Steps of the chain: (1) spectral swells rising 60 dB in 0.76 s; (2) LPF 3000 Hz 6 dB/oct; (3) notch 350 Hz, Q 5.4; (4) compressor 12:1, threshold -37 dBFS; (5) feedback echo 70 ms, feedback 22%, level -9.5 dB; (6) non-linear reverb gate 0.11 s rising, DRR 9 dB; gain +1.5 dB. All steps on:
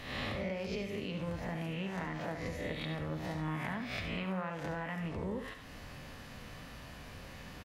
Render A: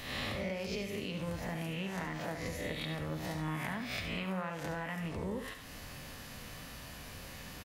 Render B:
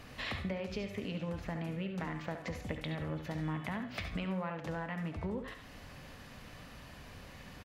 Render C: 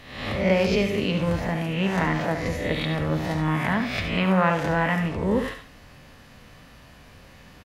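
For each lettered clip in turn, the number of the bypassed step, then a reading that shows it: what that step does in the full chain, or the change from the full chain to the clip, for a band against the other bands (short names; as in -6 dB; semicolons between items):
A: 2, 8 kHz band +8.0 dB; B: 1, 125 Hz band +2.0 dB; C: 4, mean gain reduction 9.5 dB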